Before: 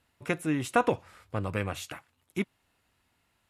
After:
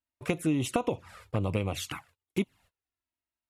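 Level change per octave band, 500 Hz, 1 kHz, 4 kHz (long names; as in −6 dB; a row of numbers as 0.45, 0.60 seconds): −1.5, −6.0, +3.0 decibels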